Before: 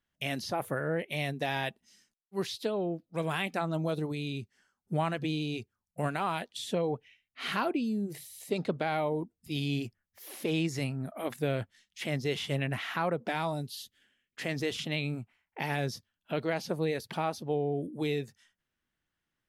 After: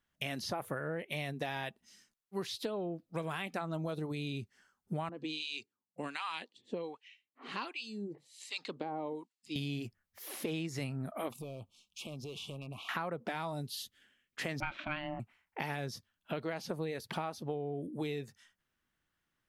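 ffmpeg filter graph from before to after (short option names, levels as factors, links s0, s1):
-filter_complex "[0:a]asettb=1/sr,asplit=3[s0][s1][s2];[s0]atrim=end=5.094[s3];[s1]atrim=start=5.09:end=9.56,asetpts=PTS-STARTPTS,afade=t=in:d=0.004:c=qsin,afade=t=out:st=4.466:d=0.004:c=qsin,acrossover=split=1000[s4][s5];[s4]aeval=exprs='val(0)*(1-1/2+1/2*cos(2*PI*1.3*n/s))':c=same[s6];[s5]aeval=exprs='val(0)*(1-1/2-1/2*cos(2*PI*1.3*n/s))':c=same[s7];[s6][s7]amix=inputs=2:normalize=0,highpass=270,equalizer=f=280:t=q:w=4:g=5,equalizer=f=660:t=q:w=4:g=-9,equalizer=f=1400:t=q:w=4:g=-7,equalizer=f=2800:t=q:w=4:g=4,equalizer=f=4300:t=q:w=4:g=6,equalizer=f=7500:t=q:w=4:g=4,lowpass=f=8300:w=0.5412,lowpass=f=8300:w=1.3066[s8];[s2]atrim=start=9.556[s9];[s3][s8]acrossfade=d=0.004:c1=hsin:c2=qsin[s10];[s10][s9]acrossfade=d=0.004:c1=qsin:c2=hsin,asettb=1/sr,asplit=3[s11][s12][s13];[s11]atrim=end=11.314[s14];[s12]atrim=start=11.31:end=12.89,asetpts=PTS-STARTPTS,afade=t=in:d=0.004:c=qsin,afade=t=out:st=1.576:d=0.004:c=qsin,volume=15,asoftclip=hard,volume=0.0668,acompressor=threshold=0.00891:ratio=10:attack=3.2:release=140:knee=1:detection=peak,asuperstop=centerf=1700:order=12:qfactor=1.5[s15];[s13]atrim=start=12.886[s16];[s14][s15]acrossfade=d=0.004:c1=hsin:c2=qsin[s17];[s17][s16]acrossfade=d=0.004:c1=qsin:c2=hsin,asettb=1/sr,asplit=3[s18][s19][s20];[s18]atrim=end=14.604[s21];[s19]atrim=start=14.6:end=15.2,asetpts=PTS-STARTPTS,afade=t=in:d=0.004:c=qsin,afade=t=out:st=0.596:d=0.004:c=qsin,lowpass=f=1800:t=q:w=6.1,aeval=exprs='val(0)*sin(2*PI*450*n/s)':c=same[s22];[s20]atrim=start=15.196[s23];[s21][s22]acrossfade=d=0.004:c1=hsin:c2=qsin[s24];[s24][s23]acrossfade=d=0.004:c1=qsin:c2=hsin,equalizer=f=1200:t=o:w=0.77:g=3,acompressor=threshold=0.0178:ratio=6,volume=1.12"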